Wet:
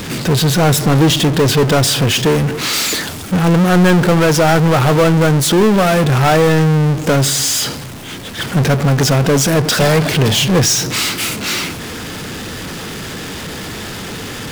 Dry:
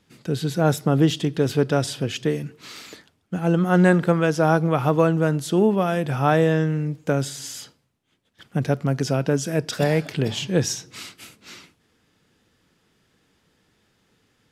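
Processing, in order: 2.73–3.34 s: treble shelf 5.3 kHz +10 dB; power-law waveshaper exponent 0.35

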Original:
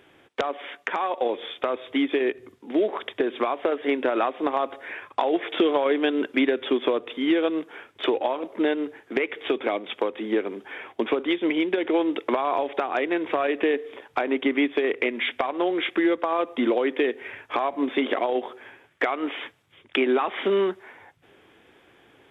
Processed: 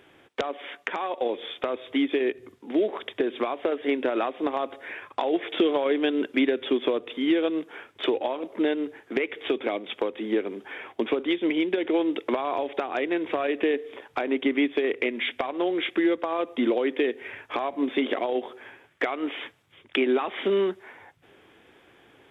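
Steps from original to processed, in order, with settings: dynamic bell 1.1 kHz, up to -5 dB, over -38 dBFS, Q 0.74

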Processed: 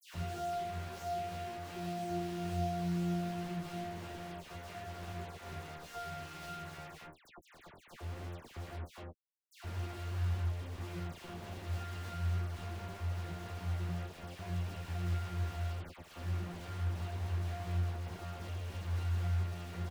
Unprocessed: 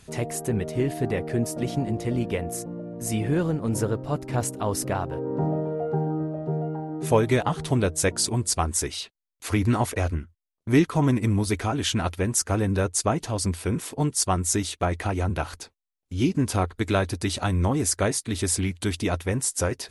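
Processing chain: one-bit comparator; 6.98–9.50 s: static phaser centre 530 Hz, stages 6; multi-tap echo 123/287/486 ms -15/-11.5/-16 dB; peak limiter -26.5 dBFS, peak gain reduction 10 dB; pitch-class resonator F, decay 0.68 s; bit crusher 8-bit; treble shelf 5.5 kHz -7 dB; band-stop 1.3 kHz, Q 22; doubling 13 ms -9 dB; phase dispersion lows, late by 129 ms, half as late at 2.1 kHz; trim +2.5 dB

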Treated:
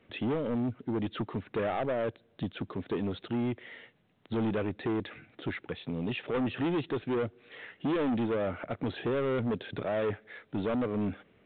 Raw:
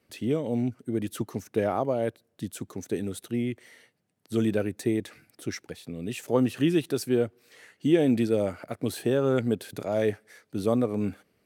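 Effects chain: in parallel at 0 dB: compression, threshold -35 dBFS, peak gain reduction 18 dB; on the sum: saturation -26.5 dBFS, distortion -7 dB; µ-law 64 kbps 8 kHz

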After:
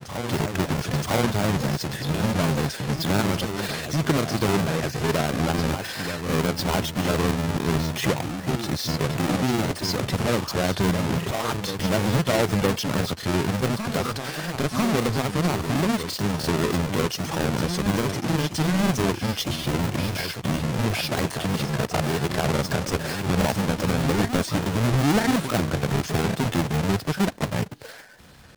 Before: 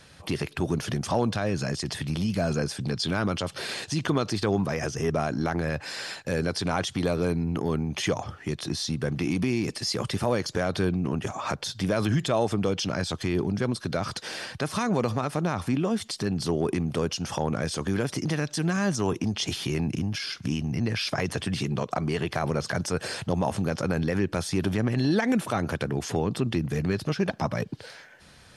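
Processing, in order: square wave that keeps the level; reverse echo 976 ms -8 dB; granulator, spray 21 ms, pitch spread up and down by 0 st

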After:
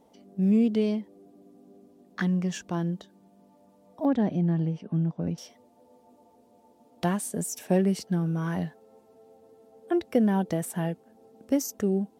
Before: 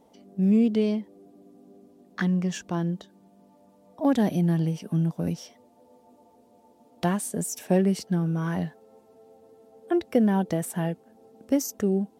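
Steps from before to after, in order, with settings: 4.05–5.38 s: tape spacing loss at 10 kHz 25 dB; trim -1.5 dB

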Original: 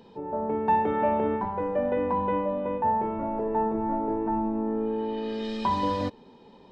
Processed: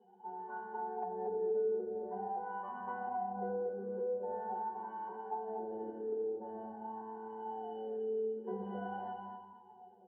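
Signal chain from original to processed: partial rectifier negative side -7 dB; hum notches 50/100 Hz; pitch-class resonator F#, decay 0.1 s; reverberation RT60 0.70 s, pre-delay 3 ms, DRR 6 dB; wah-wah 0.68 Hz 450–1000 Hz, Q 11; time stretch by phase-locked vocoder 1.5×; low-pass that closes with the level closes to 1 kHz, closed at -49 dBFS; compression 2.5:1, threshold -54 dBFS, peak gain reduction 8 dB; feedback delay 232 ms, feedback 21%, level -7 dB; trim +17 dB

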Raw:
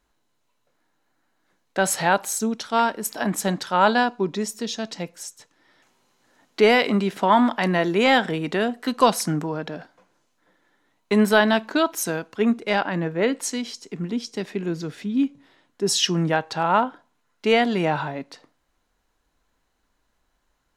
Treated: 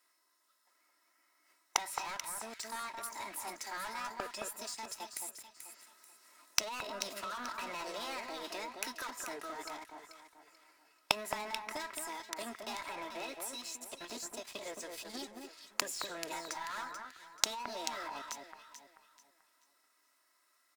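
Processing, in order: high-pass 550 Hz 12 dB/octave; low-pass that closes with the level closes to 2.7 kHz, closed at -16.5 dBFS; treble shelf 4.3 kHz +9 dB; band-stop 2.3 kHz, Q 6.3; comb 3.1 ms, depth 67%; waveshaping leveller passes 5; compression 10:1, threshold -23 dBFS, peak gain reduction 17 dB; formant shift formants +5 st; inverted gate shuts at -22 dBFS, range -25 dB; echo whose repeats swap between lows and highs 218 ms, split 1.8 kHz, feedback 55%, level -4 dB; trim +6.5 dB

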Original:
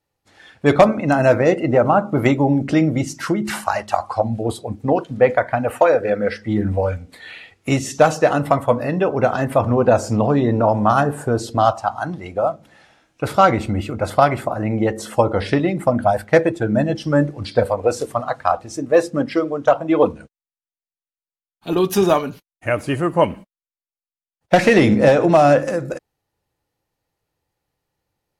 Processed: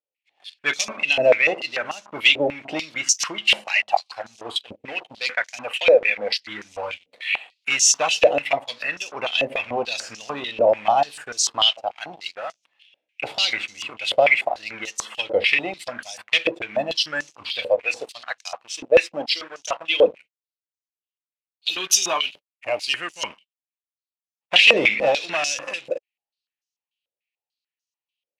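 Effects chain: resonant high shelf 1.9 kHz +12 dB, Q 3; waveshaping leveller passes 3; step-sequenced band-pass 6.8 Hz 550–6100 Hz; trim -5.5 dB

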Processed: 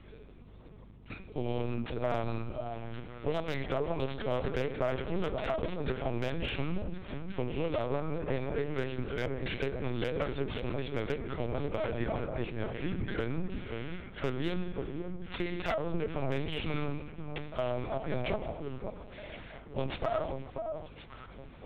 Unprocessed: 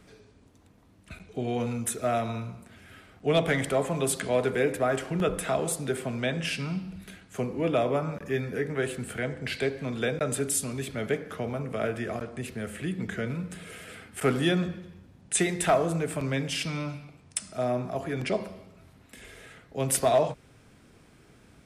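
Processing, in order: self-modulated delay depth 0.21 ms; reverse; upward compressor, threshold -48 dBFS; reverse; peaking EQ 1.7 kHz -4 dB 0.22 oct; compression 5:1, threshold -29 dBFS, peak gain reduction 10 dB; on a send: echo whose repeats swap between lows and highs 534 ms, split 1.1 kHz, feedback 51%, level -5 dB; on the sum: LPC vocoder at 8 kHz pitch kept; hum 50 Hz, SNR 21 dB; slew-rate limiter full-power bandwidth 100 Hz

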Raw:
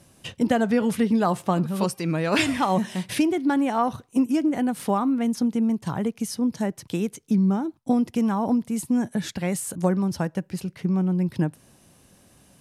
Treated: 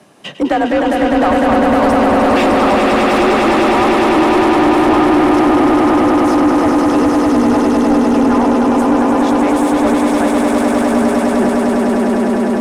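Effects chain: echo with a slow build-up 101 ms, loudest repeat 8, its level -4 dB; frequency shift +47 Hz; overdrive pedal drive 23 dB, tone 1.2 kHz, clips at -2.5 dBFS

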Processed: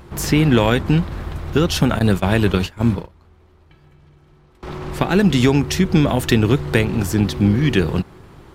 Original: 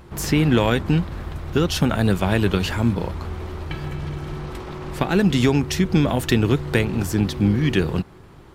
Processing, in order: 1.99–4.63 s: gate -21 dBFS, range -24 dB; trim +3 dB

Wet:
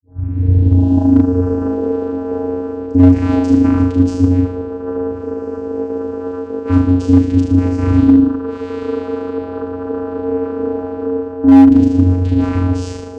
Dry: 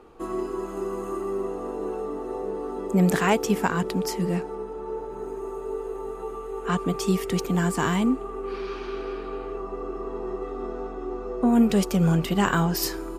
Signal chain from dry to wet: tape start-up on the opening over 1.70 s; Schroeder reverb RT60 0.64 s, combs from 26 ms, DRR 6 dB; in parallel at -2.5 dB: peak limiter -16.5 dBFS, peak gain reduction 8 dB; on the sum: tone controls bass +7 dB, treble +3 dB; gain riding within 4 dB 0.5 s; bass shelf 210 Hz +5 dB; on a send: flutter echo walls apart 6.5 m, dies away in 0.67 s; on the sum: vocoder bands 8, square 90.6 Hz; hard clipper -4 dBFS, distortion -17 dB; trim +2 dB

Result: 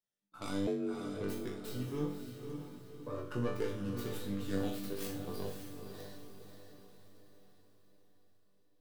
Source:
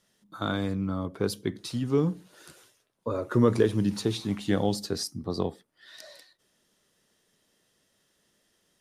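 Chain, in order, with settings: tracing distortion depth 0.41 ms; gate -48 dBFS, range -18 dB; in parallel at 0 dB: compression, threshold -32 dBFS, peak gain reduction 16 dB; on the sum: chord resonator G2 major, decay 0.53 s; vibrato 1.7 Hz 16 cents; 0.67–1.20 s: frequency shift +140 Hz; on a send: echo that smears into a reverb 553 ms, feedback 48%, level -7 dB; on the sum: trim +1.5 dB

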